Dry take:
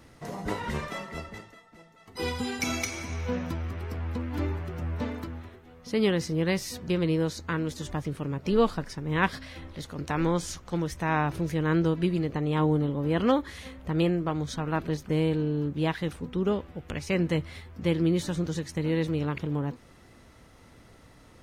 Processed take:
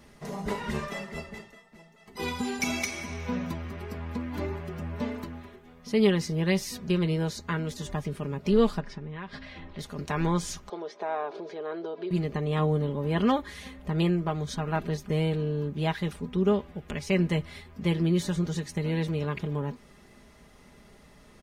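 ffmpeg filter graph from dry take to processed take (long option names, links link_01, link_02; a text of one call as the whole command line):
ffmpeg -i in.wav -filter_complex "[0:a]asettb=1/sr,asplit=3[link_01][link_02][link_03];[link_01]atrim=end=8.804[link_04];[link_02]atrim=start=8.8:end=9.79,asetpts=PTS-STARTPTS,afade=type=in:duration=0.004:curve=qsin,afade=type=out:start_time=0.986:duration=0.004:curve=qsin,lowpass=3700,acompressor=threshold=-33dB:ratio=16:attack=3.2:release=140:knee=1:detection=peak[link_05];[link_03]atrim=start=9.786[link_06];[link_04][link_05]acrossfade=duration=0.004:curve1=hsin:curve2=qsin[link_07];[link_07][link_06]acrossfade=duration=0.004:curve1=qsin:curve2=hsin,asettb=1/sr,asplit=3[link_08][link_09][link_10];[link_08]atrim=end=10.694[link_11];[link_09]atrim=start=10.69:end=12.11,asetpts=PTS-STARTPTS,afade=type=in:duration=0.004:curve=qsin,afade=type=out:start_time=1.416:duration=0.004:curve=qsin,acompressor=threshold=-28dB:ratio=3:attack=3.2:release=140:knee=1:detection=peak,highpass=frequency=330:width=0.5412,highpass=frequency=330:width=1.3066,equalizer=frequency=420:width_type=q:width=4:gain=7,equalizer=frequency=670:width_type=q:width=4:gain=8,equalizer=frequency=1900:width_type=q:width=4:gain=-8,equalizer=frequency=2700:width_type=q:width=4:gain=-8,lowpass=frequency=4400:width=0.5412,lowpass=frequency=4400:width=1.3066[link_12];[link_10]atrim=start=12.106[link_13];[link_11][link_12]acrossfade=duration=0.004:curve1=hsin:curve2=qsin[link_14];[link_14][link_13]acrossfade=duration=0.004:curve1=qsin:curve2=hsin,equalizer=frequency=1400:width=7.9:gain=-3,aecho=1:1:4.9:0.62,volume=-1dB" out.wav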